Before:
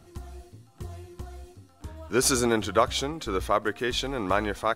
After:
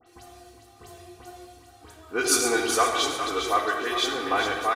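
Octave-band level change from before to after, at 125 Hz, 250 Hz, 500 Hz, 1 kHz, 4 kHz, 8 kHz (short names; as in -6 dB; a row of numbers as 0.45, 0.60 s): -12.5, -3.0, -0.5, +3.5, +4.0, +3.5 dB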